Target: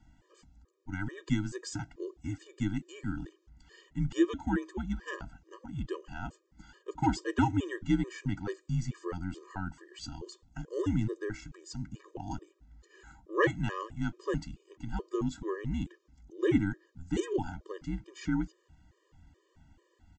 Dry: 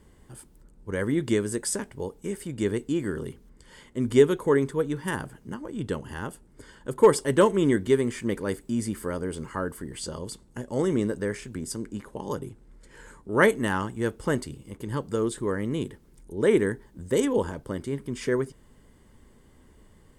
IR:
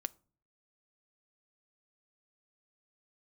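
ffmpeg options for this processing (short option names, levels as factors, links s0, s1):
-af "afreqshift=-92,aresample=16000,aresample=44100,afftfilt=real='re*gt(sin(2*PI*2.3*pts/sr)*(1-2*mod(floor(b*sr/1024/320),2)),0)':imag='im*gt(sin(2*PI*2.3*pts/sr)*(1-2*mod(floor(b*sr/1024/320),2)),0)':win_size=1024:overlap=0.75,volume=0.668"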